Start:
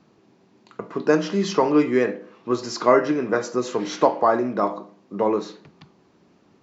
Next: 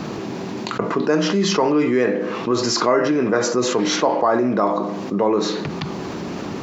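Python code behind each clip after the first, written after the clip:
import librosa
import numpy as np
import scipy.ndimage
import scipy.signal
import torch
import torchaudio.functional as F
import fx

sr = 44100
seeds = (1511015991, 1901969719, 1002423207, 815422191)

y = fx.env_flatten(x, sr, amount_pct=70)
y = F.gain(torch.from_numpy(y), -2.5).numpy()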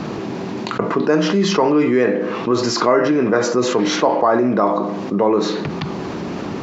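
y = fx.high_shelf(x, sr, hz=6200.0, db=-9.0)
y = F.gain(torch.from_numpy(y), 2.5).numpy()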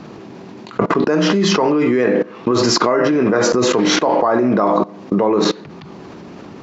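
y = fx.level_steps(x, sr, step_db=21)
y = F.gain(torch.from_numpy(y), 6.5).numpy()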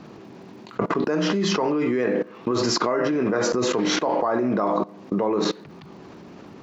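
y = fx.dmg_crackle(x, sr, seeds[0], per_s=80.0, level_db=-44.0)
y = F.gain(torch.from_numpy(y), -7.5).numpy()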